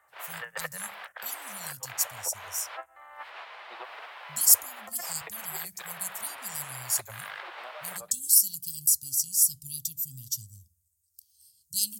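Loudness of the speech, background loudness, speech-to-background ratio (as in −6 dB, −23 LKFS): −26.5 LKFS, −42.0 LKFS, 15.5 dB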